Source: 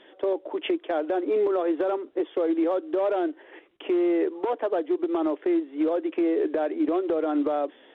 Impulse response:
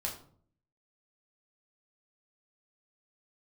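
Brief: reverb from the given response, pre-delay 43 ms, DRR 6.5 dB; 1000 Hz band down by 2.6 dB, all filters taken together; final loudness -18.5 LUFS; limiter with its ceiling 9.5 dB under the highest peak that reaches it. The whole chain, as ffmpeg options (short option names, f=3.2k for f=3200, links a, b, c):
-filter_complex "[0:a]equalizer=f=1k:t=o:g=-4,alimiter=level_in=2.5dB:limit=-24dB:level=0:latency=1,volume=-2.5dB,asplit=2[a][b];[1:a]atrim=start_sample=2205,adelay=43[c];[b][c]afir=irnorm=-1:irlink=0,volume=-8.5dB[d];[a][d]amix=inputs=2:normalize=0,volume=15dB"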